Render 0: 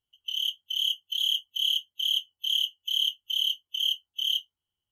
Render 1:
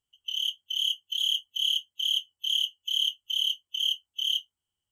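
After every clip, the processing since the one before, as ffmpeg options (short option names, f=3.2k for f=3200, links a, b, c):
-af "equalizer=f=4k:t=o:w=0.33:g=-3,equalizer=f=8k:t=o:w=0.33:g=10,equalizer=f=12.5k:t=o:w=0.33:g=-5"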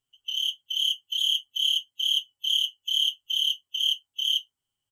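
-af "aecho=1:1:7.4:0.77"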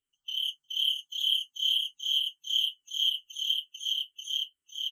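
-filter_complex "[0:a]aecho=1:1:504:0.668,asplit=2[a][b];[b]afreqshift=-2.2[c];[a][c]amix=inputs=2:normalize=1,volume=-3dB"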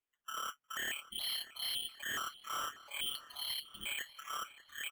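-filter_complex "[0:a]acrusher=samples=8:mix=1:aa=0.000001:lfo=1:lforange=4.8:lforate=0.51,volume=28dB,asoftclip=hard,volume=-28dB,asplit=2[a][b];[b]adelay=591,lowpass=f=4.5k:p=1,volume=-17dB,asplit=2[c][d];[d]adelay=591,lowpass=f=4.5k:p=1,volume=0.53,asplit=2[e][f];[f]adelay=591,lowpass=f=4.5k:p=1,volume=0.53,asplit=2[g][h];[h]adelay=591,lowpass=f=4.5k:p=1,volume=0.53,asplit=2[i][j];[j]adelay=591,lowpass=f=4.5k:p=1,volume=0.53[k];[a][c][e][g][i][k]amix=inputs=6:normalize=0,volume=-7.5dB"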